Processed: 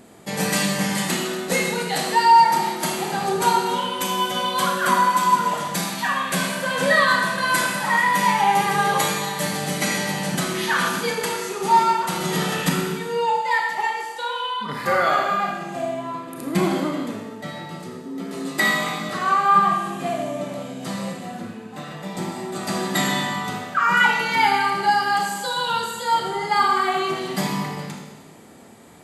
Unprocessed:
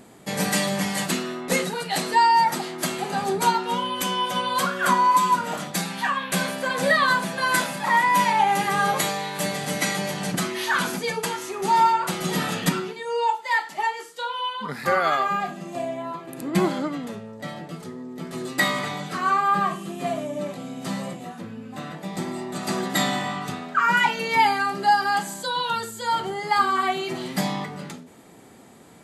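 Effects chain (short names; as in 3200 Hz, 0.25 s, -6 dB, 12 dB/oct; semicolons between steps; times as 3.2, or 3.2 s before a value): 18.05–19.09 frequency shift +21 Hz; Schroeder reverb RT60 1.3 s, combs from 26 ms, DRR 1 dB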